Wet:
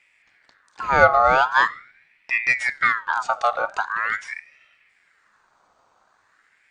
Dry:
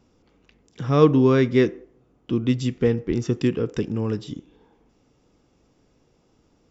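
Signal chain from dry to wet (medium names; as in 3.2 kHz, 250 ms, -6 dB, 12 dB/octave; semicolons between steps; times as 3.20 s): two-slope reverb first 0.49 s, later 2 s, from -22 dB, DRR 18 dB; ring modulator with a swept carrier 1.6 kHz, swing 40%, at 0.43 Hz; trim +3 dB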